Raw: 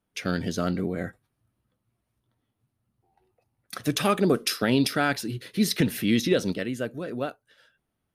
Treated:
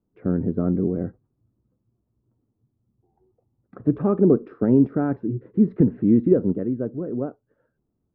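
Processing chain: low-pass 1.1 kHz 24 dB/octave; resonant low shelf 510 Hz +7 dB, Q 1.5; trim -2 dB

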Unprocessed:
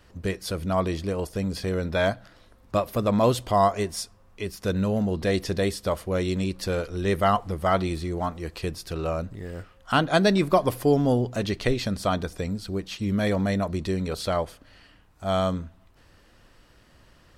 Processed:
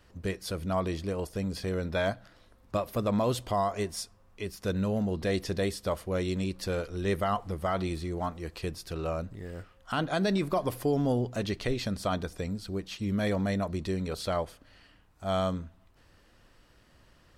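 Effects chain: peak limiter -14 dBFS, peak gain reduction 7 dB; trim -4.5 dB

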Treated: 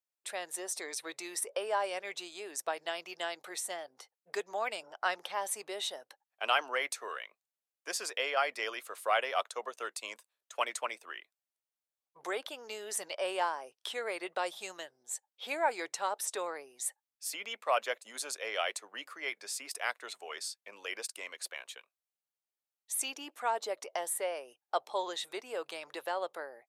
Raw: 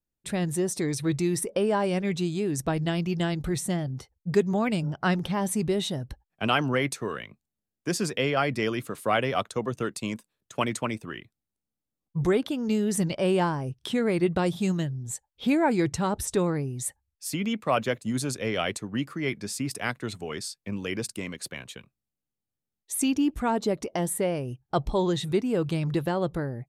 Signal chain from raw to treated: high-pass 560 Hz 24 dB/octave; trim -3.5 dB

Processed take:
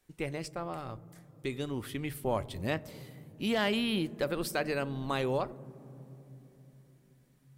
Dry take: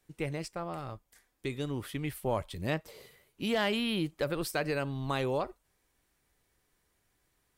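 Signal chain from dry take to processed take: on a send: low-pass 1 kHz 6 dB/octave + reverberation RT60 3.5 s, pre-delay 3 ms, DRR 18 dB

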